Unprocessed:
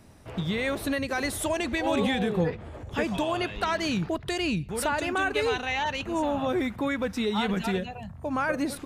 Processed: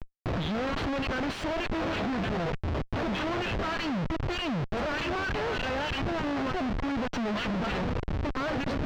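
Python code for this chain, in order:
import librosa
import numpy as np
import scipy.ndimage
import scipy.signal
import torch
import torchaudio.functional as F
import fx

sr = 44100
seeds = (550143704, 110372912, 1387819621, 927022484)

p1 = fx.lower_of_two(x, sr, delay_ms=0.69)
p2 = fx.peak_eq(p1, sr, hz=670.0, db=13.5, octaves=0.58)
p3 = fx.over_compress(p2, sr, threshold_db=-30.0, ratio=-0.5)
p4 = p2 + (p3 * librosa.db_to_amplitude(-1.0))
p5 = fx.harmonic_tremolo(p4, sr, hz=3.3, depth_pct=100, crossover_hz=1800.0)
p6 = fx.schmitt(p5, sr, flips_db=-37.5)
y = fx.air_absorb(p6, sr, metres=200.0)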